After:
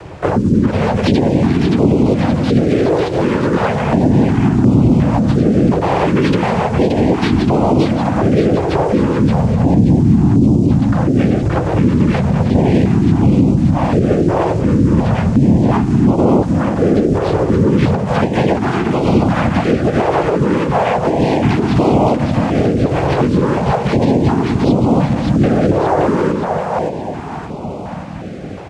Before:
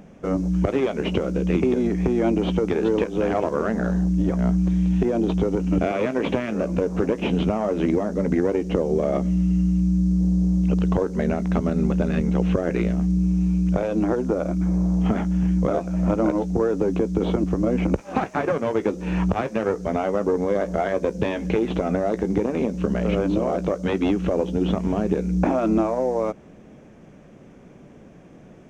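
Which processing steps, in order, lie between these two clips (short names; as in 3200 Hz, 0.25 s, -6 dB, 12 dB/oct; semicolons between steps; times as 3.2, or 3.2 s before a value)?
median filter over 9 samples; notches 50/100/150/200/250/300/350/400/450/500 Hz; compressor 3:1, threshold -31 dBFS, peak gain reduction 11 dB; noise vocoder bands 8; harmoniser -12 st -5 dB, -3 st -3 dB, +4 st -6 dB; split-band echo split 460 Hz, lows 0.284 s, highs 0.574 s, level -4 dB; maximiser +18 dB; stepped notch 2.8 Hz 230–1700 Hz; gain -1 dB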